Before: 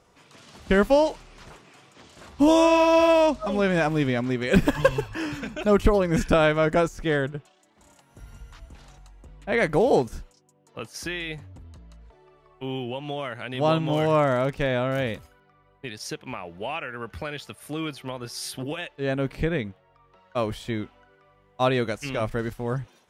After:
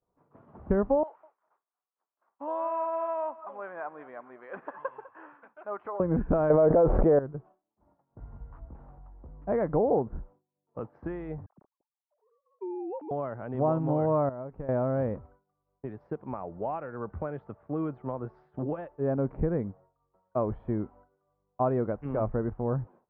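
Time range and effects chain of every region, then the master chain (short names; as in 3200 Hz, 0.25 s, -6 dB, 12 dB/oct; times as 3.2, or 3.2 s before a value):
1.03–6 HPF 1300 Hz + air absorption 140 m + feedback echo 0.201 s, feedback 28%, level -18 dB
6.5–7.19 G.711 law mismatch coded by A + bell 540 Hz +11.5 dB 1.2 oct + fast leveller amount 100%
11.46–13.11 sine-wave speech + compressor 4:1, threshold -33 dBFS
14.29–14.69 compressor 20:1, threshold -31 dBFS + gate -37 dBFS, range -7 dB
whole clip: compressor 2.5:1, threshold -23 dBFS; LPF 1100 Hz 24 dB/oct; expander -49 dBFS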